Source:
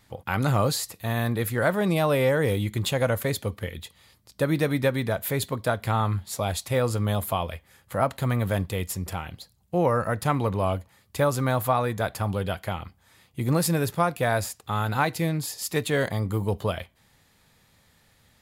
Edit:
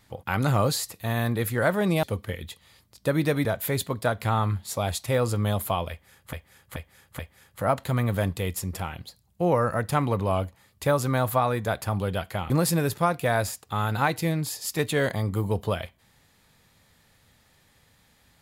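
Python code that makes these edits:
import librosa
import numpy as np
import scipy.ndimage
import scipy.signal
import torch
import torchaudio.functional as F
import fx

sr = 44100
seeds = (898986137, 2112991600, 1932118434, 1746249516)

y = fx.edit(x, sr, fx.cut(start_s=2.03, length_s=1.34),
    fx.cut(start_s=4.79, length_s=0.28),
    fx.repeat(start_s=7.52, length_s=0.43, count=4),
    fx.cut(start_s=12.83, length_s=0.64), tone=tone)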